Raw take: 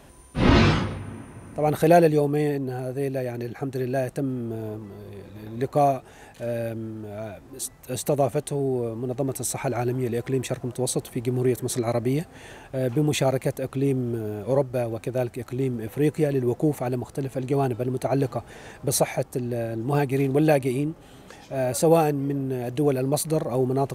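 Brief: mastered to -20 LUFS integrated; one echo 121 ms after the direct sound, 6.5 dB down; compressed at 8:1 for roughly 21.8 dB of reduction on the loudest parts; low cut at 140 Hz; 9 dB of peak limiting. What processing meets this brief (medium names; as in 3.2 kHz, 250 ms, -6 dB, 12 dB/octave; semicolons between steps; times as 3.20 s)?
high-pass 140 Hz; compression 8:1, threshold -35 dBFS; peak limiter -30 dBFS; delay 121 ms -6.5 dB; trim +19.5 dB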